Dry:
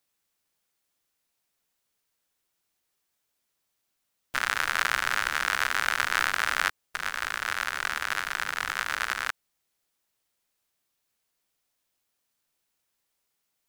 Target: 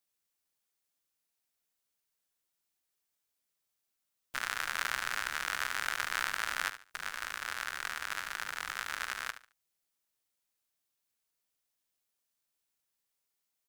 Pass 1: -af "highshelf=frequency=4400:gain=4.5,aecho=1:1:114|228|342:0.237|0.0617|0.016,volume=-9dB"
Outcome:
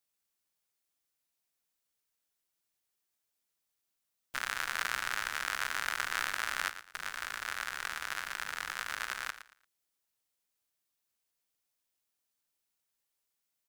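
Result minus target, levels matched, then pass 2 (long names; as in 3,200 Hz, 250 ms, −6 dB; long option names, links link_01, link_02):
echo 42 ms late
-af "highshelf=frequency=4400:gain=4.5,aecho=1:1:72|144|216:0.237|0.0617|0.016,volume=-9dB"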